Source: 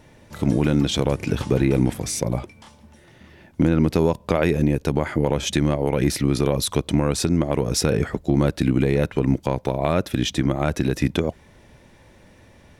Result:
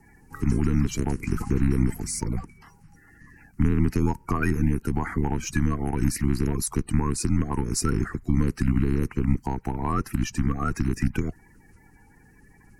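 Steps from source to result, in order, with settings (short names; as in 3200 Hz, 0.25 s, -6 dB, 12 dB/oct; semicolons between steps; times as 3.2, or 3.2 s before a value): bin magnitudes rounded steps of 30 dB; fixed phaser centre 1500 Hz, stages 4; frequency shift -60 Hz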